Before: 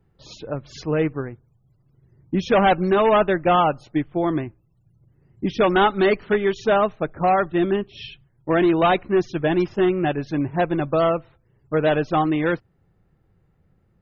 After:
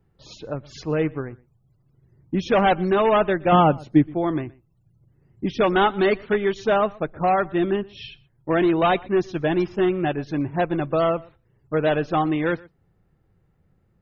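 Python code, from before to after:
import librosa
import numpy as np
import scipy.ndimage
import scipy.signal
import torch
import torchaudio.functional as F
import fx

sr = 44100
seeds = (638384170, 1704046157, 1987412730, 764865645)

y = fx.peak_eq(x, sr, hz=190.0, db=10.0, octaves=2.7, at=(3.52, 4.14))
y = y + 10.0 ** (-23.5 / 20.0) * np.pad(y, (int(121 * sr / 1000.0), 0))[:len(y)]
y = F.gain(torch.from_numpy(y), -1.5).numpy()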